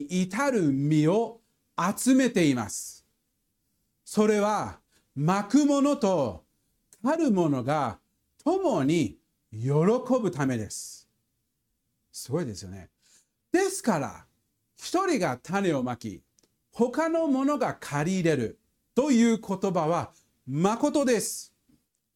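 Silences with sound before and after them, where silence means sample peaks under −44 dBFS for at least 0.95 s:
0:02.98–0:04.07
0:10.99–0:12.14

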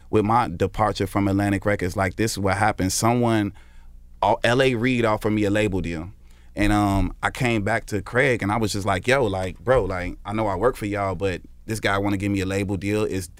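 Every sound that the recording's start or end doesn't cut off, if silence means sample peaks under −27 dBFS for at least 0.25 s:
0:04.23–0:06.06
0:06.57–0:11.37

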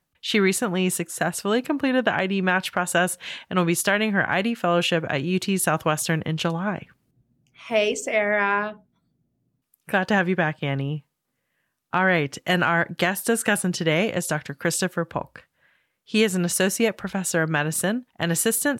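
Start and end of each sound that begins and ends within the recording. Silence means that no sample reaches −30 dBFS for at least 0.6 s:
0:07.68–0:08.71
0:09.89–0:10.98
0:11.93–0:15.38

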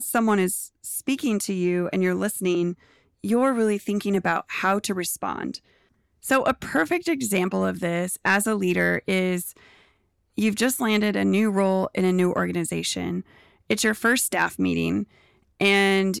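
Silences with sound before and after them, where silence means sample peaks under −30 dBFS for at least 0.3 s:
0:02.73–0:03.24
0:05.56–0:06.25
0:09.50–0:10.38
0:13.21–0:13.70
0:15.03–0:15.61

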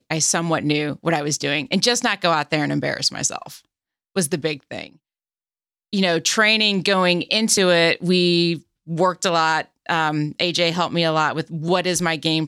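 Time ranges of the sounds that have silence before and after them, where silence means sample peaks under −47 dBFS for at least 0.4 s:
0:04.16–0:04.96

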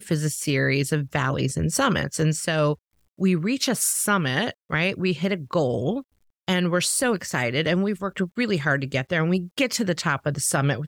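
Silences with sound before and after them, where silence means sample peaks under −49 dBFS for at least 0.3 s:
0:02.76–0:03.18
0:06.03–0:06.48

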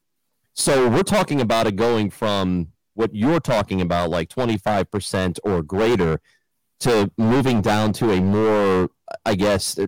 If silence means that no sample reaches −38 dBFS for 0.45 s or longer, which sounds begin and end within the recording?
0:00.57–0:06.17

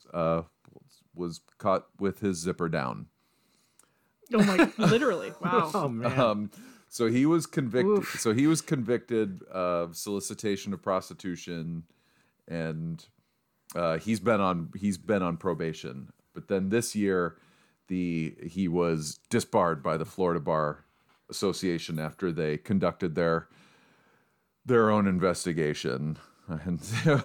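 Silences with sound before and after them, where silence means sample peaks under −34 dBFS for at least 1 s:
0:03.02–0:04.27
0:23.40–0:24.68

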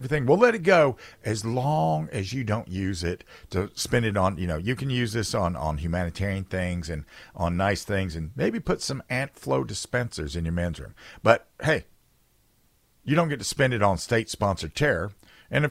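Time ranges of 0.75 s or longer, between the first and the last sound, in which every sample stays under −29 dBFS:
0:11.79–0:13.08

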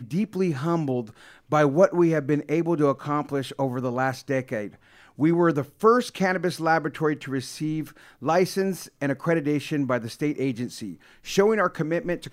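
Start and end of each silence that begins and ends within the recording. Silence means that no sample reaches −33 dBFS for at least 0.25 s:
0:01.07–0:01.52
0:04.68–0:05.19
0:07.88–0:08.22
0:10.93–0:11.27

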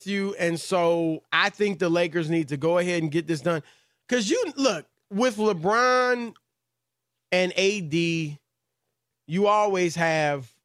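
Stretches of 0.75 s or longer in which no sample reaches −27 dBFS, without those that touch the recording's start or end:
0:06.26–0:07.32
0:08.28–0:09.32

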